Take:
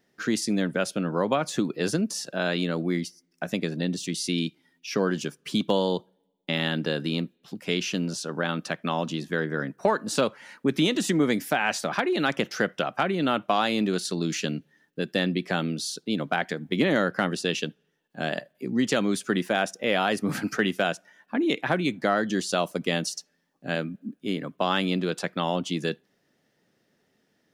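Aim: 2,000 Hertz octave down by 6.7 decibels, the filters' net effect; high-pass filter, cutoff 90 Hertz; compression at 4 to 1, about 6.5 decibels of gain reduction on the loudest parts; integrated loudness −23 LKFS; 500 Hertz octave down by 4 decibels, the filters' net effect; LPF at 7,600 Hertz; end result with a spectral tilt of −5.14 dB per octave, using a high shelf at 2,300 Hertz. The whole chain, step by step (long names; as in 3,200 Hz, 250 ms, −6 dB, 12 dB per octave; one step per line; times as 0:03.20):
high-pass filter 90 Hz
low-pass filter 7,600 Hz
parametric band 500 Hz −4.5 dB
parametric band 2,000 Hz −7 dB
high-shelf EQ 2,300 Hz −4 dB
downward compressor 4 to 1, threshold −29 dBFS
level +11.5 dB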